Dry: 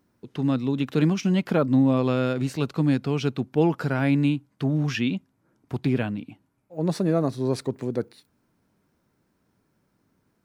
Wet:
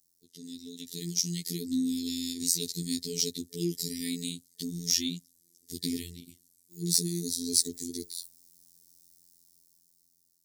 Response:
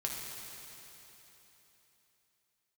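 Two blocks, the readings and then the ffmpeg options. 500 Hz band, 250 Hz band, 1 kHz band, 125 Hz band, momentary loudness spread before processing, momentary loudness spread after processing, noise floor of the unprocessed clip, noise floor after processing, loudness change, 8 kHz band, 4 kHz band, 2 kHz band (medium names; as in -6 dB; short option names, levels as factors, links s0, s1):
-15.5 dB, -11.0 dB, under -40 dB, -15.0 dB, 9 LU, 17 LU, -71 dBFS, -71 dBFS, -6.0 dB, +16.5 dB, +6.5 dB, -16.5 dB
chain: -af "afftfilt=real='re*(1-between(b*sr/4096,450,1800))':imag='im*(1-between(b*sr/4096,450,1800))':win_size=4096:overlap=0.75,highpass=57,afftfilt=real='hypot(re,im)*cos(PI*b)':imag='0':win_size=2048:overlap=0.75,dynaudnorm=f=410:g=7:m=4.47,aexciter=amount=15.6:drive=9.2:freq=4200,volume=0.126"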